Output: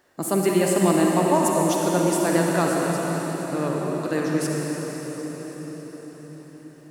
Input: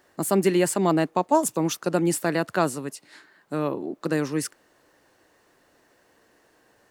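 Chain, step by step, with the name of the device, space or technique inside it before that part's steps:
cathedral (convolution reverb RT60 5.7 s, pre-delay 40 ms, DRR −2 dB)
level −1.5 dB

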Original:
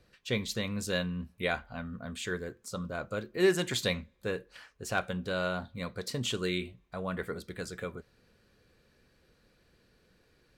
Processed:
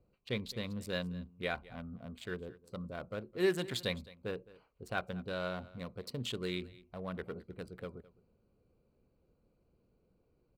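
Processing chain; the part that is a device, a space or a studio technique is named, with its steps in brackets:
adaptive Wiener filter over 25 samples
exciter from parts (in parallel at −4 dB: high-pass filter 4,800 Hz 12 dB per octave + soft clipping −35 dBFS, distortion −13 dB + high-pass filter 4,700 Hz 24 dB per octave)
on the sum: single-tap delay 212 ms −20 dB
level −5 dB

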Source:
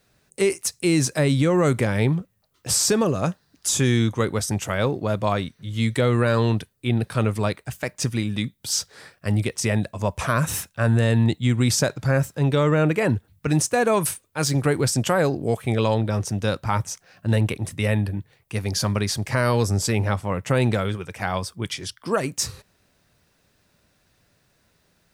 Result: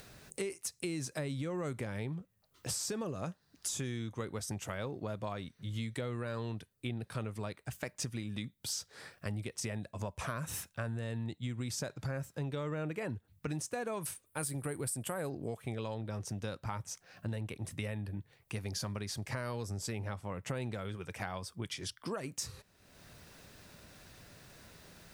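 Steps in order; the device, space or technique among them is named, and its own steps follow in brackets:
0:14.26–0:15.30: high shelf with overshoot 7,600 Hz +8 dB, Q 3
upward and downward compression (upward compression, threshold −35 dBFS; downward compressor 6 to 1, threshold −29 dBFS, peak gain reduction 14.5 dB)
level −6.5 dB

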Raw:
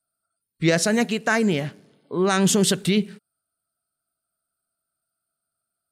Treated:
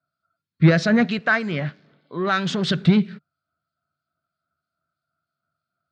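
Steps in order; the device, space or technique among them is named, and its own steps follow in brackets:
guitar amplifier with harmonic tremolo (two-band tremolo in antiphase 3.1 Hz, depth 50%, crossover 2,300 Hz; soft clipping −15.5 dBFS, distortion −15 dB; loudspeaker in its box 83–4,100 Hz, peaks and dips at 85 Hz +9 dB, 150 Hz +8 dB, 430 Hz −6 dB, 860 Hz −5 dB, 1,400 Hz +4 dB, 2,900 Hz −6 dB)
0:01.19–0:02.70: low-shelf EQ 390 Hz −11 dB
level +6.5 dB

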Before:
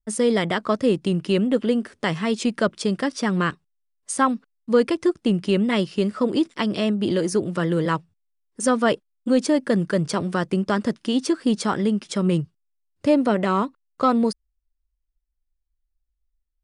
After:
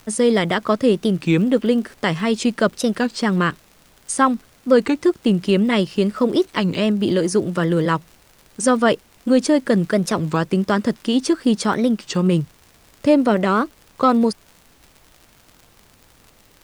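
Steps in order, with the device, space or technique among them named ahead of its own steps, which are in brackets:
warped LP (wow of a warped record 33 1/3 rpm, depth 250 cents; surface crackle 77 per second −37 dBFS; pink noise bed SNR 34 dB)
level +3.5 dB

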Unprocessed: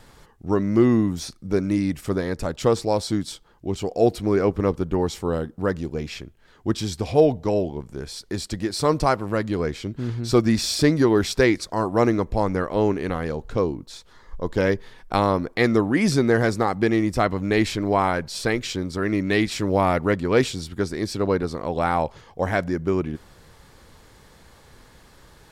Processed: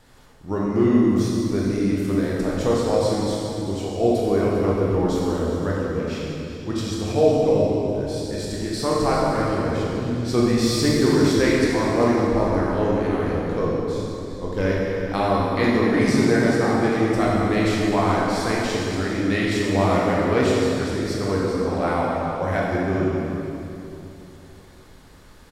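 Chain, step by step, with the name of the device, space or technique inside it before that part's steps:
cave (single-tap delay 399 ms −13 dB; convolution reverb RT60 2.8 s, pre-delay 16 ms, DRR −5 dB)
level −5.5 dB

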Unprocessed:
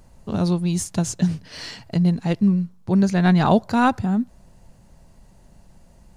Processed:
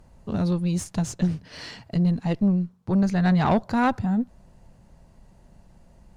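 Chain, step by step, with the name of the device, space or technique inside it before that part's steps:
tube preamp driven hard (tube saturation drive 14 dB, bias 0.4; high-shelf EQ 4,100 Hz −7.5 dB)

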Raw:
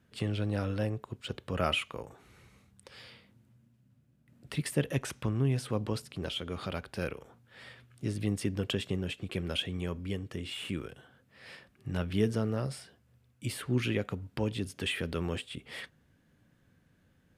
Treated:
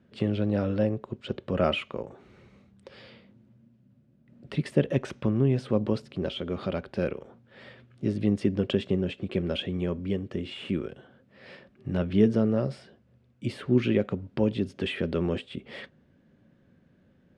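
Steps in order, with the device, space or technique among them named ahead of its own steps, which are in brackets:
inside a cardboard box (low-pass filter 4,500 Hz 12 dB per octave; hollow resonant body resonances 220/370/550 Hz, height 9 dB, ringing for 25 ms)

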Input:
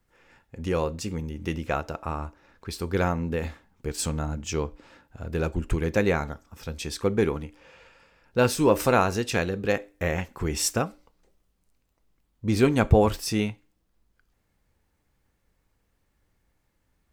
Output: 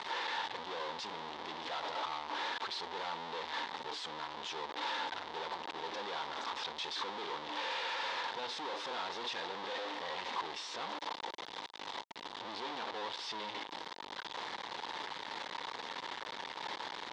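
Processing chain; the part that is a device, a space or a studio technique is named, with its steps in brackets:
home computer beeper (sign of each sample alone; loudspeaker in its box 550–4,500 Hz, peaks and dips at 630 Hz −4 dB, 930 Hz +9 dB, 1,400 Hz −4 dB, 2,500 Hz −5 dB, 3,600 Hz +6 dB)
level −8 dB

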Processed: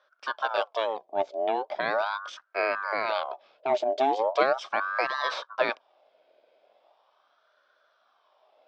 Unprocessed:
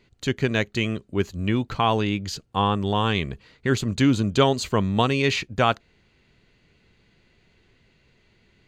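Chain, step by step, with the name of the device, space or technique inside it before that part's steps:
voice changer toy (ring modulator whose carrier an LFO sweeps 970 Hz, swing 50%, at 0.39 Hz; loudspeaker in its box 540–4,400 Hz, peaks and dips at 610 Hz +10 dB, 910 Hz −4 dB, 1,300 Hz −4 dB, 1,900 Hz −9 dB, 2,800 Hz −7 dB, 4,200 Hz −6 dB)

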